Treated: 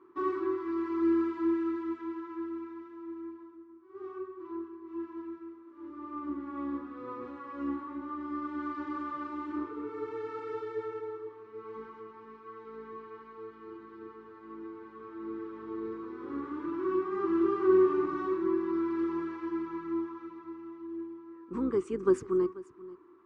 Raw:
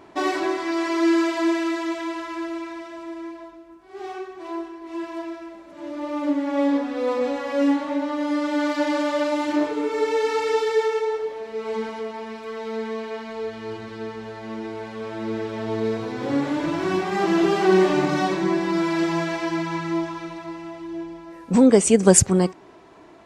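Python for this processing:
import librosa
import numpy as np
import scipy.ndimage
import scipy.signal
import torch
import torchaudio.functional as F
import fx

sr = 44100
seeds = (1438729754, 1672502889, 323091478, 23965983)

y = fx.octave_divider(x, sr, octaves=2, level_db=-2.0)
y = fx.double_bandpass(y, sr, hz=650.0, octaves=1.7)
y = y + 10.0 ** (-19.5 / 20.0) * np.pad(y, (int(486 * sr / 1000.0), 0))[:len(y)]
y = y * 10.0 ** (-3.5 / 20.0)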